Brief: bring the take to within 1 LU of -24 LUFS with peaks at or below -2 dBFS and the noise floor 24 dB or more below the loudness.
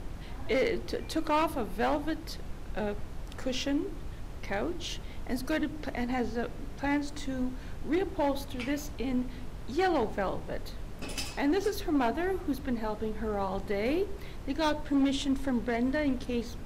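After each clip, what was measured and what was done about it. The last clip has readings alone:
clipped samples 1.1%; clipping level -21.5 dBFS; noise floor -42 dBFS; noise floor target -56 dBFS; loudness -32.0 LUFS; peak level -21.5 dBFS; loudness target -24.0 LUFS
-> clip repair -21.5 dBFS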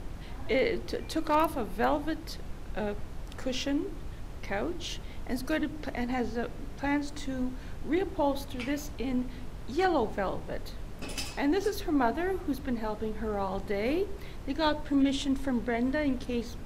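clipped samples 0.0%; noise floor -42 dBFS; noise floor target -56 dBFS
-> noise print and reduce 14 dB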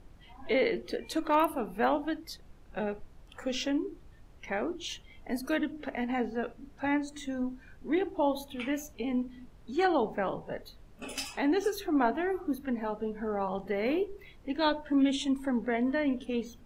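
noise floor -54 dBFS; noise floor target -56 dBFS
-> noise print and reduce 6 dB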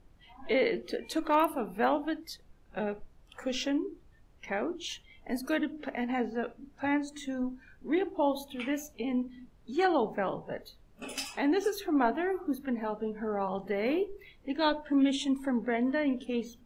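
noise floor -60 dBFS; loudness -32.0 LUFS; peak level -14.0 dBFS; loudness target -24.0 LUFS
-> trim +8 dB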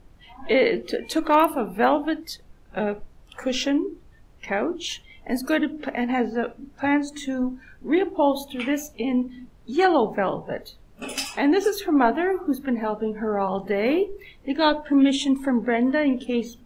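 loudness -24.0 LUFS; peak level -6.0 dBFS; noise floor -52 dBFS

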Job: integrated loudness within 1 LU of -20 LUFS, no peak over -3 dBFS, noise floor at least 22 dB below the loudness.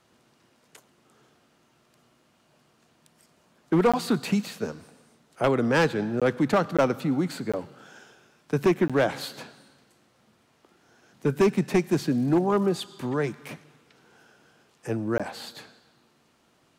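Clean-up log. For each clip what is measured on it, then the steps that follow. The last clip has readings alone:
clipped samples 0.9%; clipping level -15.0 dBFS; dropouts 6; longest dropout 16 ms; loudness -25.5 LUFS; peak level -15.0 dBFS; loudness target -20.0 LUFS
-> clip repair -15 dBFS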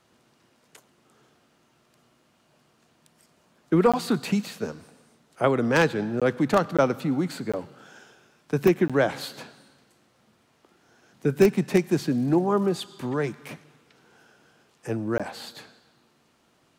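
clipped samples 0.0%; dropouts 6; longest dropout 16 ms
-> interpolate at 3.92/6.20/6.77/7.52/8.88/15.18 s, 16 ms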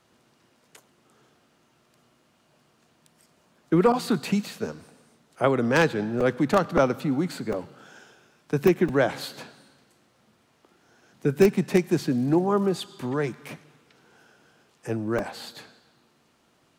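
dropouts 0; loudness -24.5 LUFS; peak level -6.0 dBFS; loudness target -20.0 LUFS
-> trim +4.5 dB; peak limiter -3 dBFS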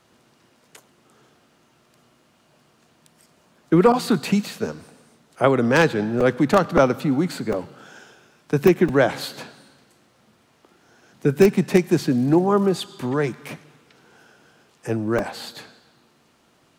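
loudness -20.5 LUFS; peak level -3.0 dBFS; noise floor -60 dBFS

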